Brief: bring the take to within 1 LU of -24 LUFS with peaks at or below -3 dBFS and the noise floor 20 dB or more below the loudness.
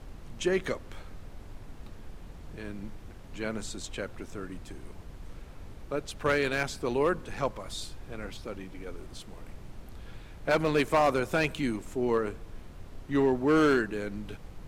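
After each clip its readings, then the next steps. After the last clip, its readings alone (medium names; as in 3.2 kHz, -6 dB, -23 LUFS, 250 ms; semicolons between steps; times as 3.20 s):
clipped samples 0.5%; clipping level -17.5 dBFS; noise floor -47 dBFS; noise floor target -50 dBFS; loudness -30.0 LUFS; peak level -17.5 dBFS; loudness target -24.0 LUFS
-> clip repair -17.5 dBFS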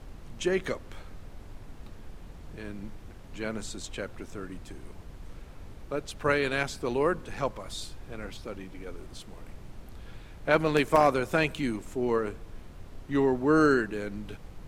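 clipped samples 0.0%; noise floor -47 dBFS; noise floor target -49 dBFS
-> noise print and reduce 6 dB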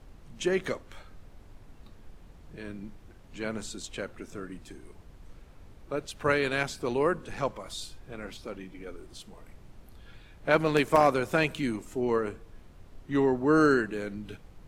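noise floor -52 dBFS; loudness -28.5 LUFS; peak level -8.5 dBFS; loudness target -24.0 LUFS
-> trim +4.5 dB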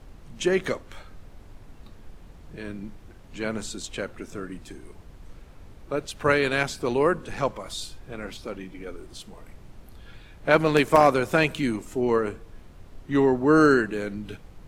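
loudness -24.0 LUFS; peak level -4.0 dBFS; noise floor -48 dBFS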